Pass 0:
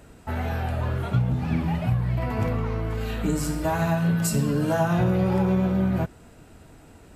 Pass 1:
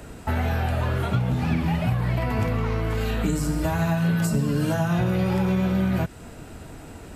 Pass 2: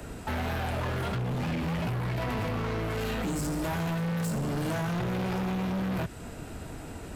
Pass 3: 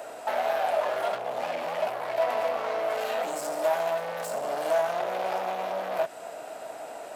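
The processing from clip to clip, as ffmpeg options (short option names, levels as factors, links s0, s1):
-filter_complex "[0:a]acrossover=split=230|1600[s0][s1][s2];[s0]acompressor=threshold=0.0251:ratio=4[s3];[s1]acompressor=threshold=0.0126:ratio=4[s4];[s2]acompressor=threshold=0.00562:ratio=4[s5];[s3][s4][s5]amix=inputs=3:normalize=0,volume=2.66"
-filter_complex "[0:a]acrossover=split=110|3300[s0][s1][s2];[s0]alimiter=level_in=2.51:limit=0.0631:level=0:latency=1,volume=0.398[s3];[s3][s1][s2]amix=inputs=3:normalize=0,asoftclip=type=hard:threshold=0.0376"
-af "aeval=exprs='val(0)+0.01*(sin(2*PI*60*n/s)+sin(2*PI*2*60*n/s)/2+sin(2*PI*3*60*n/s)/3+sin(2*PI*4*60*n/s)/4+sin(2*PI*5*60*n/s)/5)':c=same,highpass=f=640:t=q:w=4.9"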